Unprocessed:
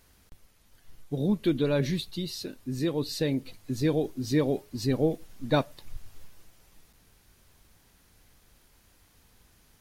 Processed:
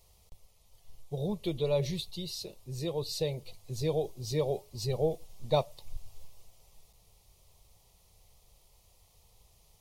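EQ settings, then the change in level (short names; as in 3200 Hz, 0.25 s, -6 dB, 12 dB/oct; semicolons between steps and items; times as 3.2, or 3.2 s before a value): bell 13000 Hz -2.5 dB 0.77 oct; fixed phaser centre 650 Hz, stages 4; 0.0 dB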